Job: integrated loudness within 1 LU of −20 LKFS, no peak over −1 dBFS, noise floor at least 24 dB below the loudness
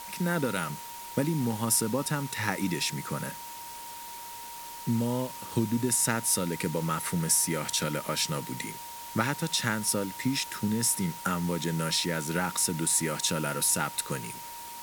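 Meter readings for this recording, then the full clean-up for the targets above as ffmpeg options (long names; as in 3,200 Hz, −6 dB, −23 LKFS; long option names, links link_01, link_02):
interfering tone 940 Hz; level of the tone −42 dBFS; background noise floor −42 dBFS; target noise floor −53 dBFS; integrated loudness −28.5 LKFS; sample peak −10.5 dBFS; target loudness −20.0 LKFS
→ -af "bandreject=frequency=940:width=30"
-af "afftdn=noise_reduction=11:noise_floor=-42"
-af "volume=8.5dB"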